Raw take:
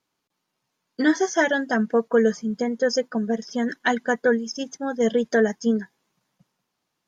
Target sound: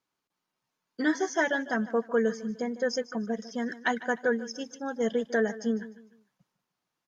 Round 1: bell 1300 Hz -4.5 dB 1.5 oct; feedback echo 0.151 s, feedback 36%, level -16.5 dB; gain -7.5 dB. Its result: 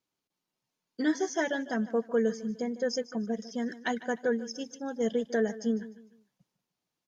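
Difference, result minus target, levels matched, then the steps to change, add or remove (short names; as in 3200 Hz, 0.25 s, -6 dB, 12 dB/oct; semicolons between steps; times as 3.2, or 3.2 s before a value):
1000 Hz band -2.5 dB
change: bell 1300 Hz +3 dB 1.5 oct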